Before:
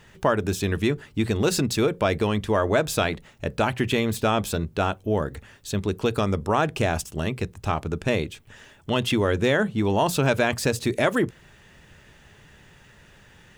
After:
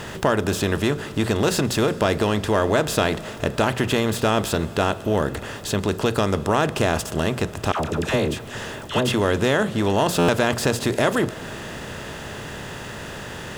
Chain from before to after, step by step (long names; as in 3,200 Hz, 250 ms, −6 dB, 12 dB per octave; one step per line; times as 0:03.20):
compressor on every frequency bin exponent 0.6
notch filter 2,300 Hz, Q 13
in parallel at −2 dB: downward compressor, threshold −31 dBFS, peak gain reduction 16.5 dB
0:07.72–0:09.14: on the sum: all-pass dispersion lows, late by 77 ms, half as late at 830 Hz
on a send at −17 dB: convolution reverb RT60 5.2 s, pre-delay 80 ms
on the sum: buffer that repeats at 0:10.18, samples 512, times 8
level −2.5 dB